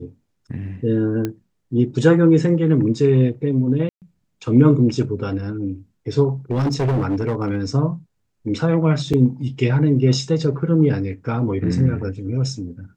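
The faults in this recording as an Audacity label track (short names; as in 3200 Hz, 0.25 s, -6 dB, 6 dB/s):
1.250000	1.250000	pop -11 dBFS
3.890000	4.020000	gap 0.128 s
6.510000	7.660000	clipped -16 dBFS
9.130000	9.140000	gap 6.1 ms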